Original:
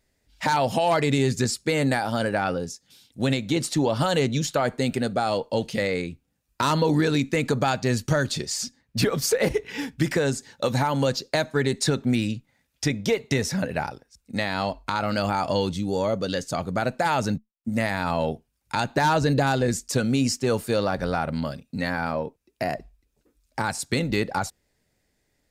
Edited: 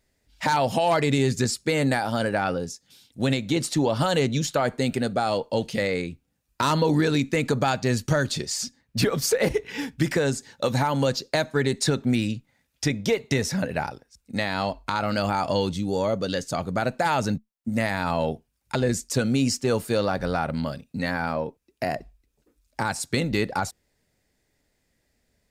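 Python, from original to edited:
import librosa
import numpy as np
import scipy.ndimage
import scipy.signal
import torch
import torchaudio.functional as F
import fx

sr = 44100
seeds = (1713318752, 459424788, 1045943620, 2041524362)

y = fx.edit(x, sr, fx.cut(start_s=18.75, length_s=0.79), tone=tone)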